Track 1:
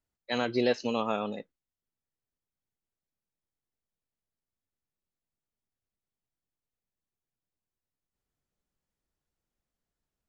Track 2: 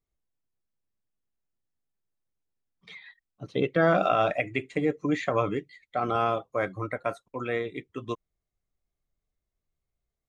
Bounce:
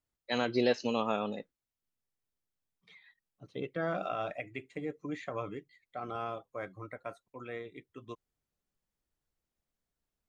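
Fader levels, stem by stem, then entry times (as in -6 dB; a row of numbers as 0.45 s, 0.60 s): -1.5 dB, -12.0 dB; 0.00 s, 0.00 s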